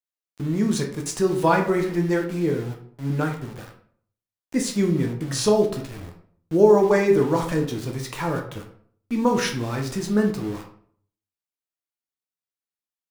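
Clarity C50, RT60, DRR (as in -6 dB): 8.0 dB, 0.55 s, 1.5 dB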